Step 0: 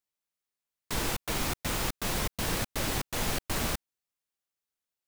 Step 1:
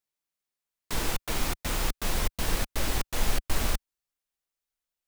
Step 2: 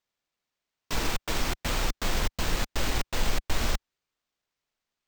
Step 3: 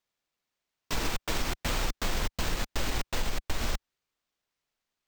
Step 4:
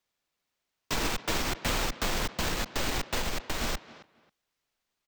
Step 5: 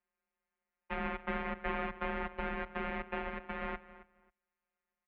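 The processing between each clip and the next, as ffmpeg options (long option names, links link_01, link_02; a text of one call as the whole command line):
ffmpeg -i in.wav -af "asubboost=boost=5:cutoff=56" out.wav
ffmpeg -i in.wav -filter_complex "[0:a]asplit=2[link_01][link_02];[link_02]alimiter=limit=-19dB:level=0:latency=1:release=101,volume=-1dB[link_03];[link_01][link_03]amix=inputs=2:normalize=0,acrusher=samples=4:mix=1:aa=0.000001,volume=-4dB" out.wav
ffmpeg -i in.wav -af "acompressor=threshold=-24dB:ratio=6" out.wav
ffmpeg -i in.wav -filter_complex "[0:a]acrossover=split=130|6500[link_01][link_02][link_03];[link_01]alimiter=level_in=7dB:limit=-24dB:level=0:latency=1,volume=-7dB[link_04];[link_02]asplit=2[link_05][link_06];[link_06]adelay=270,lowpass=frequency=3800:poles=1,volume=-16dB,asplit=2[link_07][link_08];[link_08]adelay=270,lowpass=frequency=3800:poles=1,volume=0.2[link_09];[link_05][link_07][link_09]amix=inputs=3:normalize=0[link_10];[link_04][link_10][link_03]amix=inputs=3:normalize=0,volume=2.5dB" out.wav
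ffmpeg -i in.wav -af "afftfilt=real='hypot(re,im)*cos(PI*b)':imag='0':win_size=1024:overlap=0.75,highpass=frequency=160:width_type=q:width=0.5412,highpass=frequency=160:width_type=q:width=1.307,lowpass=frequency=2500:width_type=q:width=0.5176,lowpass=frequency=2500:width_type=q:width=0.7071,lowpass=frequency=2500:width_type=q:width=1.932,afreqshift=-140" out.wav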